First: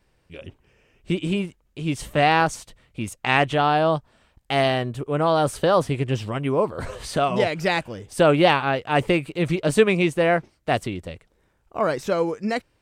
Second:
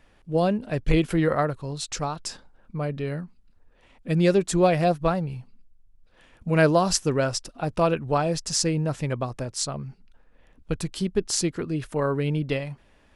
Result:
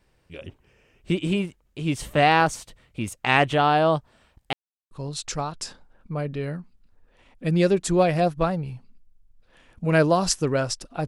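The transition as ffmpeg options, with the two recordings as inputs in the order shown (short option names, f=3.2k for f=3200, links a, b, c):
-filter_complex "[0:a]apad=whole_dur=11.07,atrim=end=11.07,asplit=2[a][b];[a]atrim=end=4.53,asetpts=PTS-STARTPTS,afade=t=out:st=4.526:d=0.004:c=hsin[c];[b]atrim=start=4.53:end=4.91,asetpts=PTS-STARTPTS,volume=0[d];[1:a]atrim=start=1.55:end=7.71,asetpts=PTS-STARTPTS,afade=t=in:d=0.004:c=hsin[e];[c][d][e]concat=n=3:v=0:a=1"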